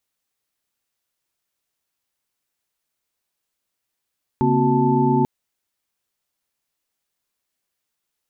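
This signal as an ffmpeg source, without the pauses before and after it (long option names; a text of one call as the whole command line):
ffmpeg -f lavfi -i "aevalsrc='0.0891*(sin(2*PI*138.59*t)+sin(2*PI*233.08*t)+sin(2*PI*261.63*t)+sin(2*PI*369.99*t)+sin(2*PI*880*t))':duration=0.84:sample_rate=44100" out.wav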